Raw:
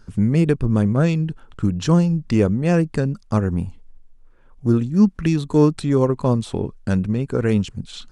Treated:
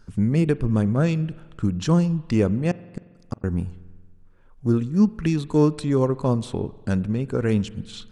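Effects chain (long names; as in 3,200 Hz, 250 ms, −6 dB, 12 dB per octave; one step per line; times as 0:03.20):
0:02.71–0:03.44: gate with flip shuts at −13 dBFS, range −40 dB
spring reverb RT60 1.5 s, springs 45 ms, chirp 45 ms, DRR 18 dB
level −3 dB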